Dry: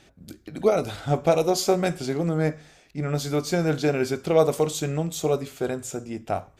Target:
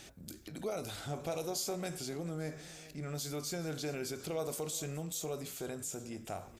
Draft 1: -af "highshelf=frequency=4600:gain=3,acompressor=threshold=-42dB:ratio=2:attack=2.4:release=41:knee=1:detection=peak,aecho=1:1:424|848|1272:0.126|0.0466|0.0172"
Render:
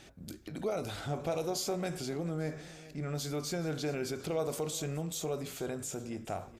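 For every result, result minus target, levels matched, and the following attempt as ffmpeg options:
downward compressor: peak gain reduction −4 dB; 8,000 Hz band −3.5 dB
-af "highshelf=frequency=4600:gain=3,acompressor=threshold=-50dB:ratio=2:attack=2.4:release=41:knee=1:detection=peak,aecho=1:1:424|848|1272:0.126|0.0466|0.0172"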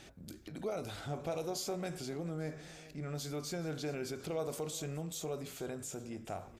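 8,000 Hz band −3.5 dB
-af "highshelf=frequency=4600:gain=13,acompressor=threshold=-50dB:ratio=2:attack=2.4:release=41:knee=1:detection=peak,aecho=1:1:424|848|1272:0.126|0.0466|0.0172"

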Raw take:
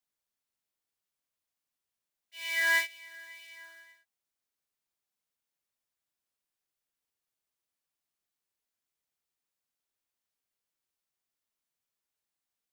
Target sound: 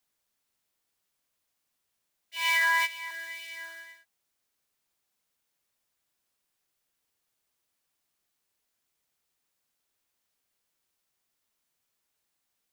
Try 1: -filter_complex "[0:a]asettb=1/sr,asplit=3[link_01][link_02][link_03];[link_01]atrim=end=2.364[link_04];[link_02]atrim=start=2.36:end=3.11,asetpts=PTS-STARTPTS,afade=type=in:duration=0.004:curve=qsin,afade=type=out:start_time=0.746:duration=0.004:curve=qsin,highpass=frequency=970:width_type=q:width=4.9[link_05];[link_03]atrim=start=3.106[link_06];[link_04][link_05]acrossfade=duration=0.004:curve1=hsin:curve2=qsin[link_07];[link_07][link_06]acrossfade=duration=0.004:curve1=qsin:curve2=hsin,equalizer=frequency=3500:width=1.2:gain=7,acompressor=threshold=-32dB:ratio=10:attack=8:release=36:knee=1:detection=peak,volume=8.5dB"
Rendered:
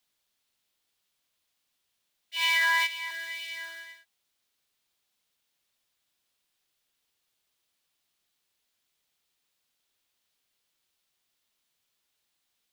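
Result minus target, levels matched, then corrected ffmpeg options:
4,000 Hz band +4.0 dB
-filter_complex "[0:a]asettb=1/sr,asplit=3[link_01][link_02][link_03];[link_01]atrim=end=2.364[link_04];[link_02]atrim=start=2.36:end=3.11,asetpts=PTS-STARTPTS,afade=type=in:duration=0.004:curve=qsin,afade=type=out:start_time=0.746:duration=0.004:curve=qsin,highpass=frequency=970:width_type=q:width=4.9[link_05];[link_03]atrim=start=3.106[link_06];[link_04][link_05]acrossfade=duration=0.004:curve1=hsin:curve2=qsin[link_07];[link_07][link_06]acrossfade=duration=0.004:curve1=qsin:curve2=hsin,acompressor=threshold=-32dB:ratio=10:attack=8:release=36:knee=1:detection=peak,volume=8.5dB"

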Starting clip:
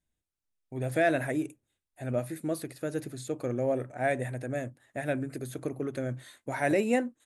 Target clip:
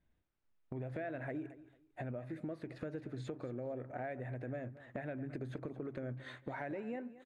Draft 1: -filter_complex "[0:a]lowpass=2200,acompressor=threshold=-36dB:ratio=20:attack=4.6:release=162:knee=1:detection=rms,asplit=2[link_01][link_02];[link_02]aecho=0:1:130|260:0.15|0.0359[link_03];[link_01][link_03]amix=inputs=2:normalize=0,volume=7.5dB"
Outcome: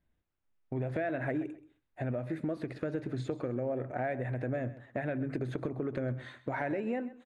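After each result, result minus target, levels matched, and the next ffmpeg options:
echo 95 ms early; downward compressor: peak gain reduction −8 dB
-filter_complex "[0:a]lowpass=2200,acompressor=threshold=-36dB:ratio=20:attack=4.6:release=162:knee=1:detection=rms,asplit=2[link_01][link_02];[link_02]aecho=0:1:225|450:0.15|0.0359[link_03];[link_01][link_03]amix=inputs=2:normalize=0,volume=7.5dB"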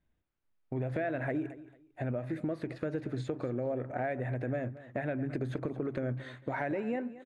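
downward compressor: peak gain reduction −8 dB
-filter_complex "[0:a]lowpass=2200,acompressor=threshold=-44.5dB:ratio=20:attack=4.6:release=162:knee=1:detection=rms,asplit=2[link_01][link_02];[link_02]aecho=0:1:225|450:0.15|0.0359[link_03];[link_01][link_03]amix=inputs=2:normalize=0,volume=7.5dB"

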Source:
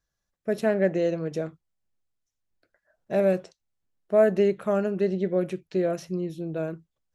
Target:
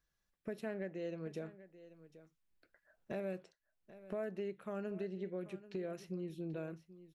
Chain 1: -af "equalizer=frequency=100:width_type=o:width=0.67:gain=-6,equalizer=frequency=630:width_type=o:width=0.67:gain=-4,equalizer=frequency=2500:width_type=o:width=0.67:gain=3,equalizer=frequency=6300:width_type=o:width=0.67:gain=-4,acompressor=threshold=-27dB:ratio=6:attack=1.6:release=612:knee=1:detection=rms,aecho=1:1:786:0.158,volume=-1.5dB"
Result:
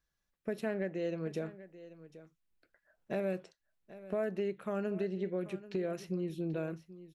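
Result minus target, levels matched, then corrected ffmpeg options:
downward compressor: peak gain reduction −6 dB
-af "equalizer=frequency=100:width_type=o:width=0.67:gain=-6,equalizer=frequency=630:width_type=o:width=0.67:gain=-4,equalizer=frequency=2500:width_type=o:width=0.67:gain=3,equalizer=frequency=6300:width_type=o:width=0.67:gain=-4,acompressor=threshold=-34.5dB:ratio=6:attack=1.6:release=612:knee=1:detection=rms,aecho=1:1:786:0.158,volume=-1.5dB"

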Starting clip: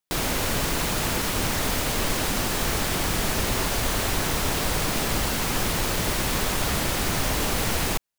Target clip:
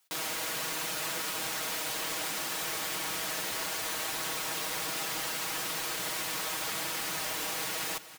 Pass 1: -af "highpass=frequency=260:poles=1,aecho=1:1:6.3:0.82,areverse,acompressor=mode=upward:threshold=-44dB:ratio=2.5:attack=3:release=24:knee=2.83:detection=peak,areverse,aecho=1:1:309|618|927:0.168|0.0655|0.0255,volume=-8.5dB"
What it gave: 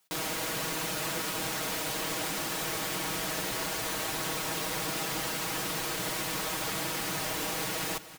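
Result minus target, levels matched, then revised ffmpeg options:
250 Hz band +6.5 dB
-af "highpass=frequency=820:poles=1,aecho=1:1:6.3:0.82,areverse,acompressor=mode=upward:threshold=-44dB:ratio=2.5:attack=3:release=24:knee=2.83:detection=peak,areverse,aecho=1:1:309|618|927:0.168|0.0655|0.0255,volume=-8.5dB"

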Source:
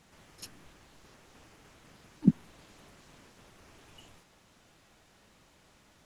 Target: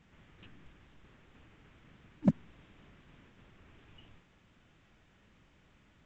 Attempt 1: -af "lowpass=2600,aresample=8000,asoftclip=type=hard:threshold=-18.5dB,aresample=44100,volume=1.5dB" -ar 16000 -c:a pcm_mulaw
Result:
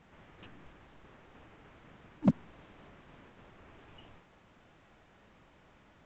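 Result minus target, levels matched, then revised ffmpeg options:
1,000 Hz band +4.5 dB
-af "lowpass=2600,equalizer=frequency=730:width_type=o:width=2.3:gain=-9.5,aresample=8000,asoftclip=type=hard:threshold=-18.5dB,aresample=44100,volume=1.5dB" -ar 16000 -c:a pcm_mulaw

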